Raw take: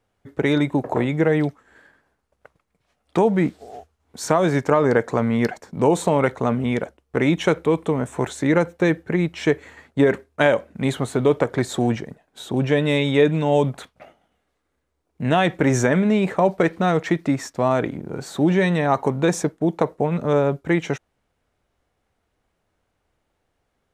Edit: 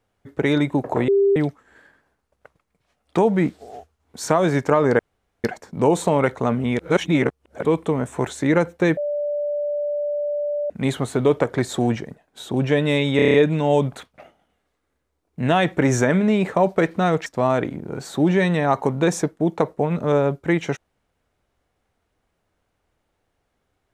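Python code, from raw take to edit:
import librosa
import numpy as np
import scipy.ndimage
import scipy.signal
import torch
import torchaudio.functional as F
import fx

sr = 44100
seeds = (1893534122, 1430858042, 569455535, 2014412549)

y = fx.edit(x, sr, fx.bleep(start_s=1.08, length_s=0.28, hz=397.0, db=-13.0),
    fx.room_tone_fill(start_s=4.99, length_s=0.45),
    fx.reverse_span(start_s=6.79, length_s=0.86),
    fx.bleep(start_s=8.97, length_s=1.73, hz=586.0, db=-21.0),
    fx.stutter(start_s=13.16, slice_s=0.03, count=7),
    fx.cut(start_s=17.08, length_s=0.39), tone=tone)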